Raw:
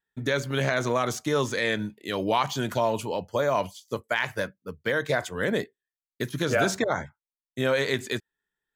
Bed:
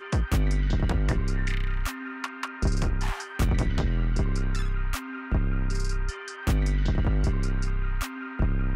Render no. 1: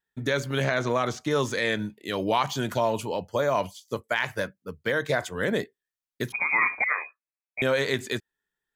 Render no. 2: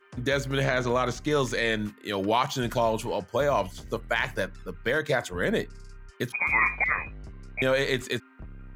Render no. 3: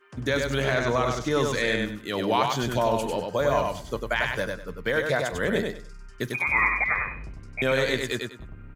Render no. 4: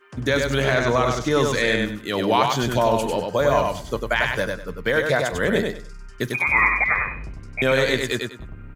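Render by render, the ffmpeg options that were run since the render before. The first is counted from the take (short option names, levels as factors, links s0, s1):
-filter_complex "[0:a]asettb=1/sr,asplit=3[s0][s1][s2];[s0]atrim=end=0.644[s3];[s1]atrim=start=0.64:end=1.31,asetpts=PTS-STARTPTS,afade=t=in:d=0.004:c=qsin,afade=t=out:st=0.666:d=0.004:c=qsin,acrossover=split=5700[s4][s5];[s5]acompressor=threshold=0.00251:ratio=4:attack=1:release=60[s6];[s4][s6]amix=inputs=2:normalize=0[s7];[s2]atrim=start=1.306[s8];[s3][s7]acrossfade=d=0.004:c1=hsin:c2=qsin[s9];[s9][s8]acrossfade=d=0.004:c1=qsin:c2=hsin,asettb=1/sr,asplit=3[s10][s11][s12];[s10]atrim=end=6.324[s13];[s11]atrim=start=6.32:end=7.62,asetpts=PTS-STARTPTS,afade=t=in:d=0.004:c=qsin,afade=t=out:st=1.296:d=0.004:c=qsin,lowpass=f=2200:t=q:w=0.5098,lowpass=f=2200:t=q:w=0.6013,lowpass=f=2200:t=q:w=0.9,lowpass=f=2200:t=q:w=2.563,afreqshift=-2600[s14];[s12]atrim=start=7.616[s15];[s13][s14]acrossfade=d=0.004:c1=hsin:c2=qsin[s16];[s16][s15]acrossfade=d=0.004:c1=qsin:c2=hsin"
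-filter_complex "[1:a]volume=0.119[s0];[0:a][s0]amix=inputs=2:normalize=0"
-af "aecho=1:1:98|196|294:0.631|0.145|0.0334"
-af "volume=1.68"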